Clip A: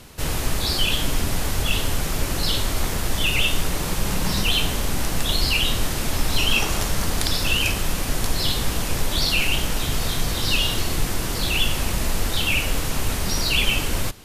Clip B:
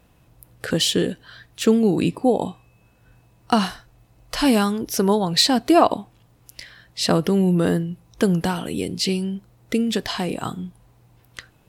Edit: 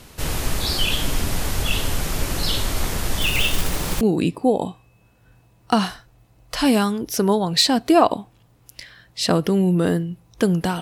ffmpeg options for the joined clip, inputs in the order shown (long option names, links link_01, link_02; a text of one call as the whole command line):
ffmpeg -i cue0.wav -i cue1.wav -filter_complex "[0:a]asettb=1/sr,asplit=3[link_01][link_02][link_03];[link_01]atrim=end=3.214[link_04];[link_02]atrim=start=3.21:end=4.01,asetpts=PTS-STARTPTS,afade=type=in:duration=0.004:curve=qsin,afade=type=out:start_time=0.796:duration=0.004:curve=qsin,acrusher=bits=3:mode=log:mix=0:aa=0.000001[link_05];[link_03]atrim=start=4.006[link_06];[link_04][link_05]acrossfade=duration=0.004:curve1=hsin:curve2=qsin[link_07];[link_07][link_06]acrossfade=duration=0.004:curve1=qsin:curve2=hsin,apad=whole_dur=10.81,atrim=end=10.81,atrim=end=4.012[link_08];[1:a]atrim=start=1.808:end=8.61[link_09];[link_08][link_09]acrossfade=duration=0.004:curve1=hsin:curve2=hsin" out.wav